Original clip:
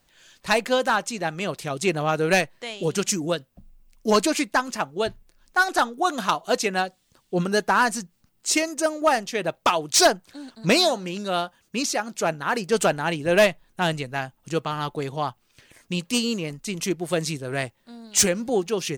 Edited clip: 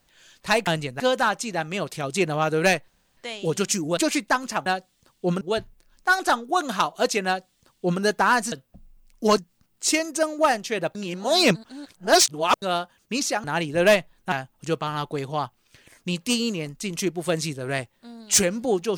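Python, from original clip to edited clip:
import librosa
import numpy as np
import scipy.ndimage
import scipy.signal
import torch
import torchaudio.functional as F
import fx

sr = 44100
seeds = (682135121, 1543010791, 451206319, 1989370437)

y = fx.edit(x, sr, fx.insert_room_tone(at_s=2.55, length_s=0.29),
    fx.move(start_s=3.35, length_s=0.86, to_s=8.01),
    fx.duplicate(start_s=6.75, length_s=0.75, to_s=4.9),
    fx.reverse_span(start_s=9.58, length_s=1.67),
    fx.cut(start_s=12.07, length_s=0.88),
    fx.move(start_s=13.83, length_s=0.33, to_s=0.67), tone=tone)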